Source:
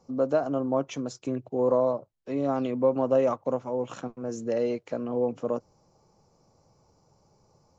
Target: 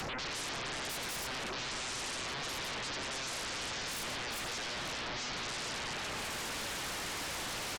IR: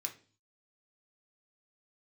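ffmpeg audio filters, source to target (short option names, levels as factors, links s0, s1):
-filter_complex "[0:a]asplit=2[s0][s1];[s1]adelay=37,volume=0.398[s2];[s0][s2]amix=inputs=2:normalize=0,aecho=1:1:83|367:0.299|0.133,asplit=2[s3][s4];[1:a]atrim=start_sample=2205,adelay=113[s5];[s4][s5]afir=irnorm=-1:irlink=0,volume=0.447[s6];[s3][s6]amix=inputs=2:normalize=0,acompressor=mode=upward:threshold=0.0141:ratio=2.5,lowpass=4200,areverse,acompressor=threshold=0.0158:ratio=10,areverse,alimiter=level_in=6.68:limit=0.0631:level=0:latency=1:release=16,volume=0.15,aeval=exprs='0.01*sin(PI/2*10*val(0)/0.01)':c=same,volume=1.58"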